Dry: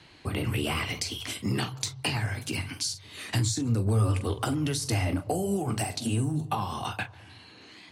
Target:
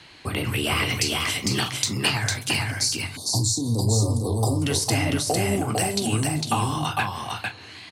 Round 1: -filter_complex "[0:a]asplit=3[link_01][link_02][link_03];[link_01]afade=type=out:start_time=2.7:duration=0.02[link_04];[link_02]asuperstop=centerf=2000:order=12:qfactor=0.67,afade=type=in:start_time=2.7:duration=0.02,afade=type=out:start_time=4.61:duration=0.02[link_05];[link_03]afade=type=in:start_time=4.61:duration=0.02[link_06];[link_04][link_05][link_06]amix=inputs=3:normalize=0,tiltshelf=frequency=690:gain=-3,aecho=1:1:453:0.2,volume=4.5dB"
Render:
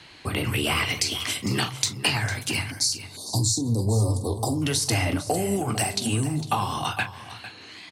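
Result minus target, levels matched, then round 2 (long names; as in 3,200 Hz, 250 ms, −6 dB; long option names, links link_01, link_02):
echo-to-direct −11 dB
-filter_complex "[0:a]asplit=3[link_01][link_02][link_03];[link_01]afade=type=out:start_time=2.7:duration=0.02[link_04];[link_02]asuperstop=centerf=2000:order=12:qfactor=0.67,afade=type=in:start_time=2.7:duration=0.02,afade=type=out:start_time=4.61:duration=0.02[link_05];[link_03]afade=type=in:start_time=4.61:duration=0.02[link_06];[link_04][link_05][link_06]amix=inputs=3:normalize=0,tiltshelf=frequency=690:gain=-3,aecho=1:1:453:0.708,volume=4.5dB"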